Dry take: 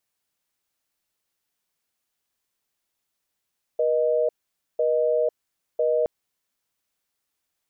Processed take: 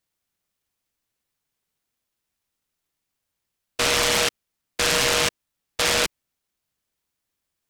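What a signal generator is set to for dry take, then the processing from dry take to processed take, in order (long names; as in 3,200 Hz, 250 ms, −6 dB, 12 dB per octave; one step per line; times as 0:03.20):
call progress tone busy tone, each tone −21.5 dBFS 2.27 s
low-shelf EQ 220 Hz +6.5 dB
short delay modulated by noise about 2,300 Hz, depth 0.42 ms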